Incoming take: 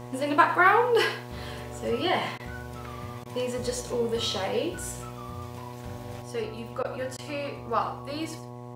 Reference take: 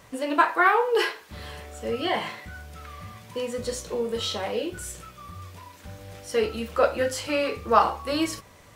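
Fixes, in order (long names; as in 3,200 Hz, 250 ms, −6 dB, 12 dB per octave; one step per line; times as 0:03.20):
hum removal 121.9 Hz, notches 9
repair the gap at 0:02.38/0:03.24/0:06.83/0:07.17, 15 ms
echo removal 102 ms −13 dB
level correction +8.5 dB, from 0:06.22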